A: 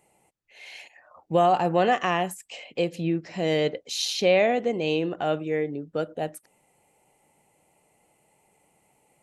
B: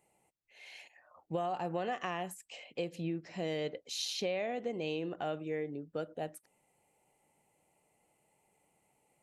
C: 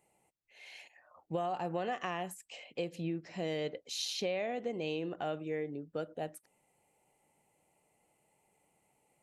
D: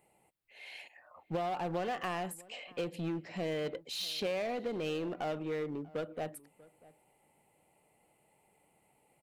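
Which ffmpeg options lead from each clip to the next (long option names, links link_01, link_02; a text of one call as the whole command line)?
ffmpeg -i in.wav -af "acompressor=threshold=-23dB:ratio=6,volume=-8.5dB" out.wav
ffmpeg -i in.wav -af anull out.wav
ffmpeg -i in.wav -filter_complex "[0:a]equalizer=frequency=6200:width=2.3:gain=-10,asplit=2[link_01][link_02];[link_02]aeval=exprs='0.0112*(abs(mod(val(0)/0.0112+3,4)-2)-1)':channel_layout=same,volume=-5dB[link_03];[link_01][link_03]amix=inputs=2:normalize=0,asplit=2[link_04][link_05];[link_05]adelay=641.4,volume=-22dB,highshelf=frequency=4000:gain=-14.4[link_06];[link_04][link_06]amix=inputs=2:normalize=0" out.wav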